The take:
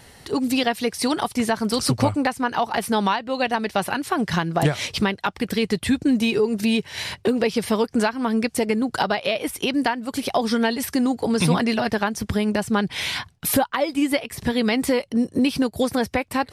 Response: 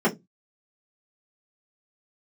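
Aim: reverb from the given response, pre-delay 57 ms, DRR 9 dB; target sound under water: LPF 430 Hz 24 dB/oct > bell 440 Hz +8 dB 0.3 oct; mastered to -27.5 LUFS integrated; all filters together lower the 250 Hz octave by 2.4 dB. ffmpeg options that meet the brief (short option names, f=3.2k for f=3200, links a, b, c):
-filter_complex "[0:a]equalizer=f=250:t=o:g=-3,asplit=2[a][b];[1:a]atrim=start_sample=2205,adelay=57[c];[b][c]afir=irnorm=-1:irlink=0,volume=-25dB[d];[a][d]amix=inputs=2:normalize=0,lowpass=f=430:w=0.5412,lowpass=f=430:w=1.3066,equalizer=f=440:t=o:w=0.3:g=8,volume=-4.5dB"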